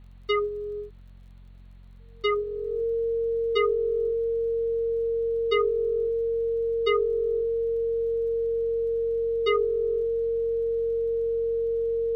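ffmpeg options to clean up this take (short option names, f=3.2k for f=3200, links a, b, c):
-af "adeclick=t=4,bandreject=f=45.1:t=h:w=4,bandreject=f=90.2:t=h:w=4,bandreject=f=135.3:t=h:w=4,bandreject=f=180.4:t=h:w=4,bandreject=f=225.5:t=h:w=4,bandreject=f=460:w=30,agate=range=-21dB:threshold=-40dB"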